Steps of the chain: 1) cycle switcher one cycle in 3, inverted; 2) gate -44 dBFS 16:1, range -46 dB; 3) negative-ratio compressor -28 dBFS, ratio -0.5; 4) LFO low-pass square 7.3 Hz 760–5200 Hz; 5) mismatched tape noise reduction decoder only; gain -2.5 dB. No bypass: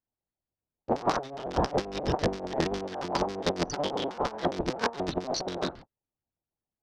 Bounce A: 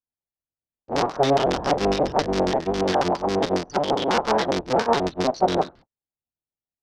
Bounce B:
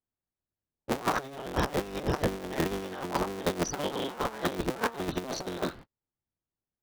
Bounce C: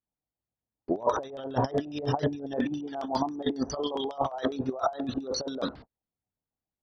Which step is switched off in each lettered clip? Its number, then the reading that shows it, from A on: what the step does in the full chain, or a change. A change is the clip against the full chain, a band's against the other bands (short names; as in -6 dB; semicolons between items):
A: 3, crest factor change -4.0 dB; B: 4, loudness change -1.5 LU; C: 1, 2 kHz band -5.0 dB